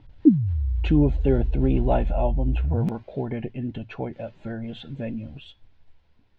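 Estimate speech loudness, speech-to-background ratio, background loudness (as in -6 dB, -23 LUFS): -27.5 LUFS, -2.0 dB, -25.5 LUFS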